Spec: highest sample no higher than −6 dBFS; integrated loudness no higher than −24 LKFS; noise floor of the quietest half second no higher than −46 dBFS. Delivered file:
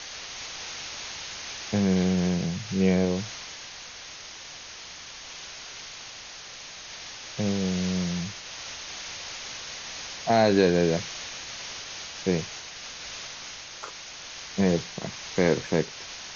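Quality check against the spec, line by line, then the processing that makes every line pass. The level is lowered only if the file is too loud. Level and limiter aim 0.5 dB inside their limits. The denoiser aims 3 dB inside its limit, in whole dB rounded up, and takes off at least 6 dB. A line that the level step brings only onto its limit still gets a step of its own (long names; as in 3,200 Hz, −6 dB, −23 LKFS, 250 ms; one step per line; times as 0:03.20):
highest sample −7.5 dBFS: in spec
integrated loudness −29.0 LKFS: in spec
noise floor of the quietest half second −42 dBFS: out of spec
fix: broadband denoise 7 dB, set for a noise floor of −42 dBFS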